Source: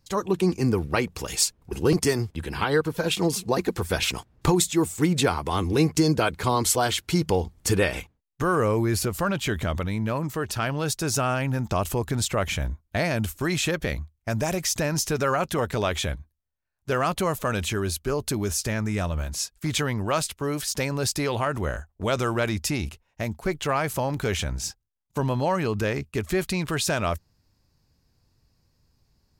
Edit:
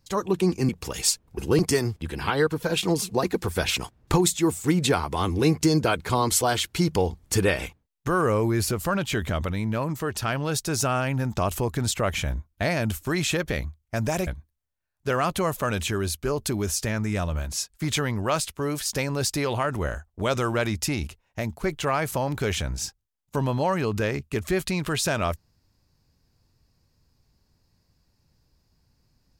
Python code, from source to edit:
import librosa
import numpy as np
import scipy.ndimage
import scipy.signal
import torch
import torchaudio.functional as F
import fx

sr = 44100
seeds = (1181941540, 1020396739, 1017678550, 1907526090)

y = fx.edit(x, sr, fx.cut(start_s=0.69, length_s=0.34),
    fx.cut(start_s=14.61, length_s=1.48), tone=tone)